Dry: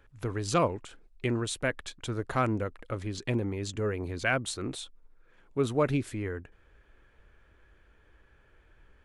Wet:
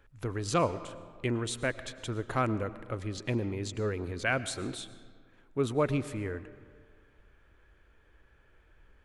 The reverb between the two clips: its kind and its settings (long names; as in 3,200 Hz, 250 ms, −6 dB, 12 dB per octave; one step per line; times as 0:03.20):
comb and all-pass reverb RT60 1.8 s, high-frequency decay 0.6×, pre-delay 70 ms, DRR 14.5 dB
level −1.5 dB